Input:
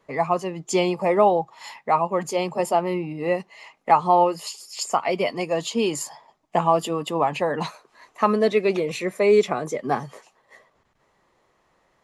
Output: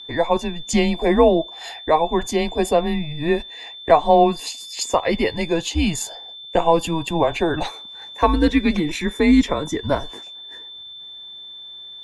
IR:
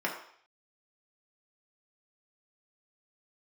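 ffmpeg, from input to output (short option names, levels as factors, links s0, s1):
-filter_complex "[0:a]aeval=exprs='val(0)+0.0112*sin(2*PI*3700*n/s)':c=same,afreqshift=-160,asplit=2[s0][s1];[1:a]atrim=start_sample=2205,asetrate=52920,aresample=44100[s2];[s1][s2]afir=irnorm=-1:irlink=0,volume=0.0473[s3];[s0][s3]amix=inputs=2:normalize=0,volume=1.41"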